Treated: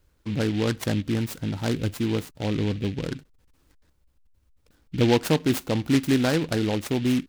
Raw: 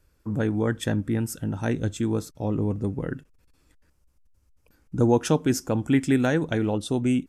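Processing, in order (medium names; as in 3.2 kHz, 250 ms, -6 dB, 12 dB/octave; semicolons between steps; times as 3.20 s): delay time shaken by noise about 2.6 kHz, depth 0.086 ms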